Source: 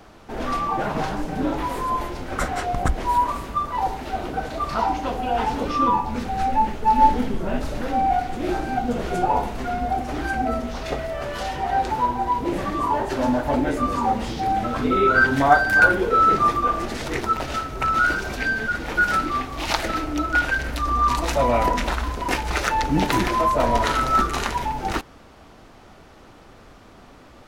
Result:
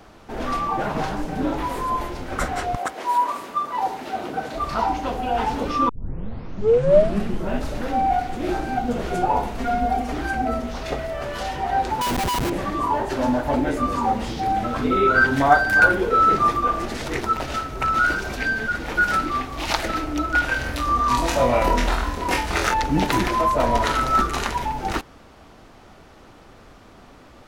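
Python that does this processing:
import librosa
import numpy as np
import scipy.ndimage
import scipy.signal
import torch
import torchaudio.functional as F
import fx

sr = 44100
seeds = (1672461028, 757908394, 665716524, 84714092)

y = fx.highpass(x, sr, hz=fx.line((2.75, 500.0), (4.54, 130.0)), slope=12, at=(2.75, 4.54), fade=0.02)
y = fx.comb(y, sr, ms=4.3, depth=0.65, at=(9.59, 10.14))
y = fx.schmitt(y, sr, flips_db=-27.5, at=(12.01, 12.5))
y = fx.room_flutter(y, sr, wall_m=4.1, rt60_s=0.32, at=(20.47, 22.74))
y = fx.edit(y, sr, fx.tape_start(start_s=5.89, length_s=1.57), tone=tone)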